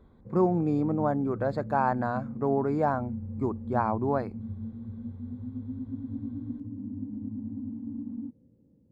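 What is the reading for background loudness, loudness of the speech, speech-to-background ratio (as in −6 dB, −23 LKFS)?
−38.5 LKFS, −28.5 LKFS, 10.0 dB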